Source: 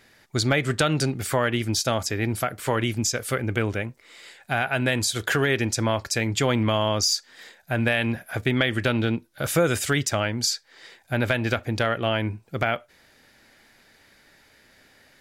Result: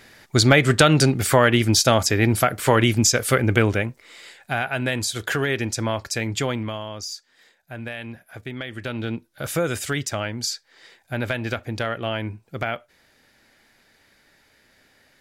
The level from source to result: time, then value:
0:03.55 +7 dB
0:04.72 −1 dB
0:06.40 −1 dB
0:06.87 −10.5 dB
0:08.66 −10.5 dB
0:09.17 −2.5 dB

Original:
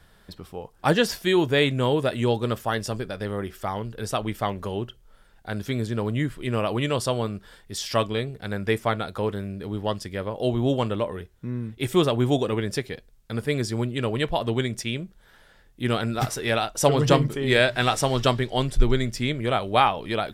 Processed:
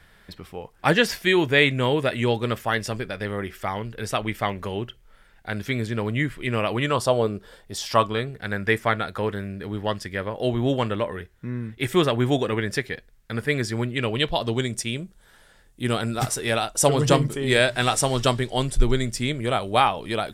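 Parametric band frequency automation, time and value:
parametric band +8.5 dB 0.85 octaves
0:06.75 2,100 Hz
0:07.31 370 Hz
0:08.38 1,800 Hz
0:13.90 1,800 Hz
0:14.77 8,700 Hz

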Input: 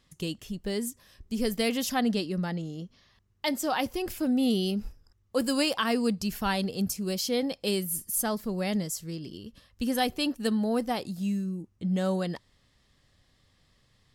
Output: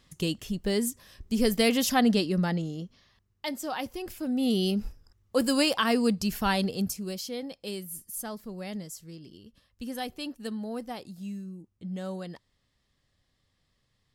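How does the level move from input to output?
0:02.53 +4 dB
0:03.52 −5 dB
0:04.22 −5 dB
0:04.64 +2 dB
0:06.67 +2 dB
0:07.35 −8 dB

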